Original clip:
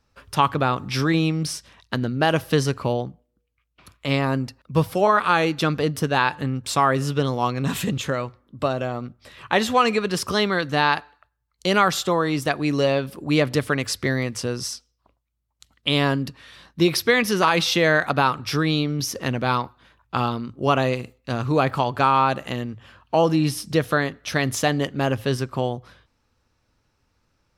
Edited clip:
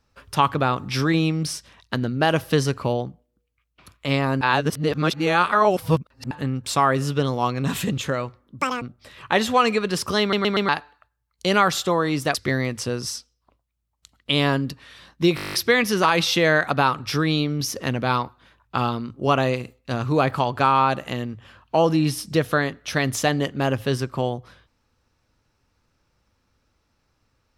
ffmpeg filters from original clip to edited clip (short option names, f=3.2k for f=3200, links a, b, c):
-filter_complex "[0:a]asplit=19[a][b][c][d][e][f][g][h][i][j][k][l][m][n][o][p][q][r][s];[a]atrim=end=4.412[t];[b]atrim=start=4.408:end=6.312,asetpts=PTS-STARTPTS,areverse[u];[c]atrim=start=6.308:end=8.614[v];[d]atrim=start=8.61:end=9.02,asetpts=PTS-STARTPTS,asetrate=87759,aresample=44100[w];[e]atrim=start=9.016:end=10.532[x];[f]atrim=start=10.408:end=10.532[y];[g]atrim=start=10.408:end=10.532[z];[h]atrim=start=10.408:end=10.532[aa];[i]atrim=start=10.888:end=12.552[ab];[j]atrim=start=13.918:end=16.952[ac];[k]atrim=start=16.928:end=16.952[ad];[l]atrim=start=16.928:end=16.952[ae];[m]atrim=start=16.928:end=16.952[af];[n]atrim=start=16.928:end=16.952[ag];[o]atrim=start=16.928:end=16.952[ah];[p]atrim=start=16.928:end=16.952[ai];[q]atrim=start=16.928:end=16.952[aj];[r]atrim=start=16.928:end=16.952[ak];[s]atrim=start=16.928[al];[t][u]acrossfade=d=0.004:c1=hsin:c2=hsin[am];[am][v]acrossfade=d=0.004:c1=hsin:c2=hsin[an];[an][w]acrossfade=d=0.004:c1=hsin:c2=hsin[ao];[ao][x]acrossfade=d=0.004:c1=hsin:c2=hsin[ap];[ap][y]acrossfade=d=0.004:c1=hsin:c2=hsin[aq];[aq][z]acrossfade=d=0.004:c1=hsin:c2=hsin[ar];[ar][aa]acrossfade=d=0.004:c1=hsin:c2=hsin[as];[as][ab]acrossfade=d=0.004:c1=hsin:c2=hsin[at];[at][ac]acrossfade=d=0.004:c1=hsin:c2=hsin[au];[au][ad]acrossfade=d=0.004:c1=hsin:c2=hsin[av];[av][ae]acrossfade=d=0.004:c1=hsin:c2=hsin[aw];[aw][af]acrossfade=d=0.004:c1=hsin:c2=hsin[ax];[ax][ag]acrossfade=d=0.004:c1=hsin:c2=hsin[ay];[ay][ah]acrossfade=d=0.004:c1=hsin:c2=hsin[az];[az][ai]acrossfade=d=0.004:c1=hsin:c2=hsin[ba];[ba][aj]acrossfade=d=0.004:c1=hsin:c2=hsin[bb];[bb][ak]acrossfade=d=0.004:c1=hsin:c2=hsin[bc];[bc][al]acrossfade=d=0.004:c1=hsin:c2=hsin"